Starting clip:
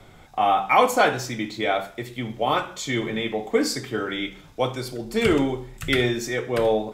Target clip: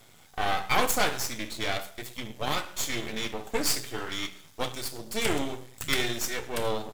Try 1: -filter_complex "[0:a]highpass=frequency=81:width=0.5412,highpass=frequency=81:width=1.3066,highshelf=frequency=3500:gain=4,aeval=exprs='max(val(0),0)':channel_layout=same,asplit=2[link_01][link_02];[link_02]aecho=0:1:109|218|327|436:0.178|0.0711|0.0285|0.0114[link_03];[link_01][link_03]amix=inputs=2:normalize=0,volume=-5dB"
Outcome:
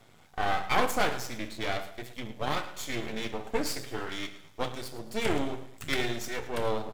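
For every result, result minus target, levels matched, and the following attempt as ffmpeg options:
8,000 Hz band −6.0 dB; echo-to-direct +8 dB
-filter_complex "[0:a]highpass=frequency=81:width=0.5412,highpass=frequency=81:width=1.3066,highshelf=frequency=3500:gain=16,aeval=exprs='max(val(0),0)':channel_layout=same,asplit=2[link_01][link_02];[link_02]aecho=0:1:109|218|327|436:0.178|0.0711|0.0285|0.0114[link_03];[link_01][link_03]amix=inputs=2:normalize=0,volume=-5dB"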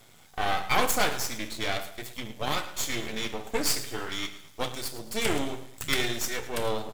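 echo-to-direct +8 dB
-filter_complex "[0:a]highpass=frequency=81:width=0.5412,highpass=frequency=81:width=1.3066,highshelf=frequency=3500:gain=16,aeval=exprs='max(val(0),0)':channel_layout=same,asplit=2[link_01][link_02];[link_02]aecho=0:1:109|218|327:0.0708|0.0283|0.0113[link_03];[link_01][link_03]amix=inputs=2:normalize=0,volume=-5dB"

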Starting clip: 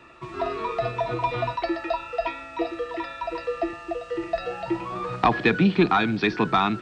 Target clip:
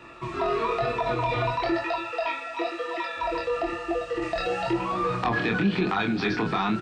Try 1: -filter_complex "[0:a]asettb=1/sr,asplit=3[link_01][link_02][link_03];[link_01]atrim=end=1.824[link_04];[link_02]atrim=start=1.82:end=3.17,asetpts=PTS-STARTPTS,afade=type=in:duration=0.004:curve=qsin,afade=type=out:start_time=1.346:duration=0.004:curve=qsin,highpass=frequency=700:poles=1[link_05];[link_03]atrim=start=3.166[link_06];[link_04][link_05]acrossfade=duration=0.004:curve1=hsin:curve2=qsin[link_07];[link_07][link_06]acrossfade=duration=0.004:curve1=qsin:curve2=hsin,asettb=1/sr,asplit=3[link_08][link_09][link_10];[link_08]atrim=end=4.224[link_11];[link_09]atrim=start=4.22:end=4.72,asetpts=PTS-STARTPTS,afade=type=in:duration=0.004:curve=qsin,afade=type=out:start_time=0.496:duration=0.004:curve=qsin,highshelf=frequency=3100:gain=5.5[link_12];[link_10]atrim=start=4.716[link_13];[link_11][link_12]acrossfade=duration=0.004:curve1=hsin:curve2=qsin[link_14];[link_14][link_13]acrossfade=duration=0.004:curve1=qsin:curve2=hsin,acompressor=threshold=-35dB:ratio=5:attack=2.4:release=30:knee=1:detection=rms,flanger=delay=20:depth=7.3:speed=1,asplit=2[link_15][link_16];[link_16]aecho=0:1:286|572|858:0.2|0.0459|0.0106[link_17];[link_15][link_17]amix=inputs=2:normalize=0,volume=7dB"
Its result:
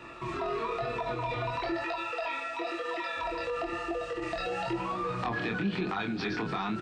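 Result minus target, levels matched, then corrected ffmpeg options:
downward compressor: peak gain reduction +7 dB
-filter_complex "[0:a]asettb=1/sr,asplit=3[link_01][link_02][link_03];[link_01]atrim=end=1.824[link_04];[link_02]atrim=start=1.82:end=3.17,asetpts=PTS-STARTPTS,afade=type=in:duration=0.004:curve=qsin,afade=type=out:start_time=1.346:duration=0.004:curve=qsin,highpass=frequency=700:poles=1[link_05];[link_03]atrim=start=3.166[link_06];[link_04][link_05]acrossfade=duration=0.004:curve1=hsin:curve2=qsin[link_07];[link_07][link_06]acrossfade=duration=0.004:curve1=qsin:curve2=hsin,asettb=1/sr,asplit=3[link_08][link_09][link_10];[link_08]atrim=end=4.224[link_11];[link_09]atrim=start=4.22:end=4.72,asetpts=PTS-STARTPTS,afade=type=in:duration=0.004:curve=qsin,afade=type=out:start_time=0.496:duration=0.004:curve=qsin,highshelf=frequency=3100:gain=5.5[link_12];[link_10]atrim=start=4.716[link_13];[link_11][link_12]acrossfade=duration=0.004:curve1=hsin:curve2=qsin[link_14];[link_14][link_13]acrossfade=duration=0.004:curve1=qsin:curve2=hsin,acompressor=threshold=-26dB:ratio=5:attack=2.4:release=30:knee=1:detection=rms,flanger=delay=20:depth=7.3:speed=1,asplit=2[link_15][link_16];[link_16]aecho=0:1:286|572|858:0.2|0.0459|0.0106[link_17];[link_15][link_17]amix=inputs=2:normalize=0,volume=7dB"

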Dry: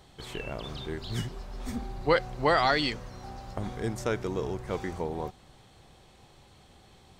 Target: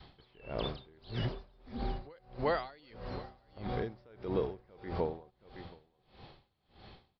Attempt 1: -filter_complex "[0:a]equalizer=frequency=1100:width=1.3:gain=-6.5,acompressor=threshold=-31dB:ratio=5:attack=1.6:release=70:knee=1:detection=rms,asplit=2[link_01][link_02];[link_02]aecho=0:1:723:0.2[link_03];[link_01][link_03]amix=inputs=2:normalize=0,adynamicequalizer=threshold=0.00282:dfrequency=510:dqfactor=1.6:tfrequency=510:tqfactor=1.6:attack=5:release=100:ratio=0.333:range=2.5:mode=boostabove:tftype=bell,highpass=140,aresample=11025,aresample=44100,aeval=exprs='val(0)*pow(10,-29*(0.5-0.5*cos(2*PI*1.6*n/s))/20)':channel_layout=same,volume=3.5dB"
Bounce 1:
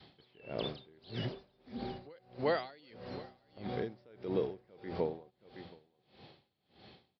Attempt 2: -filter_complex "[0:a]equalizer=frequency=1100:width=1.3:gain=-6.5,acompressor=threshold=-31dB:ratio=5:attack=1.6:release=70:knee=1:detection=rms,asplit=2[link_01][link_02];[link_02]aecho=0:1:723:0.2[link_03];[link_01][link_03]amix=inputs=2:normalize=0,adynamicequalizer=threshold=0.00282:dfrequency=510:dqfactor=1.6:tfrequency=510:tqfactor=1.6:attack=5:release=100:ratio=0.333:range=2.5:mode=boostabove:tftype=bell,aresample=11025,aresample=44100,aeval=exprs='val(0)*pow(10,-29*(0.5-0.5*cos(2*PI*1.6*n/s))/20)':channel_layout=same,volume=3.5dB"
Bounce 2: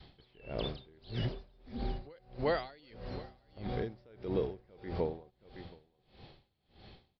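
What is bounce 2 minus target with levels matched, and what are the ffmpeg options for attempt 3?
1,000 Hz band −3.0 dB
-filter_complex "[0:a]acompressor=threshold=-31dB:ratio=5:attack=1.6:release=70:knee=1:detection=rms,asplit=2[link_01][link_02];[link_02]aecho=0:1:723:0.2[link_03];[link_01][link_03]amix=inputs=2:normalize=0,adynamicequalizer=threshold=0.00282:dfrequency=510:dqfactor=1.6:tfrequency=510:tqfactor=1.6:attack=5:release=100:ratio=0.333:range=2.5:mode=boostabove:tftype=bell,aresample=11025,aresample=44100,aeval=exprs='val(0)*pow(10,-29*(0.5-0.5*cos(2*PI*1.6*n/s))/20)':channel_layout=same,volume=3.5dB"

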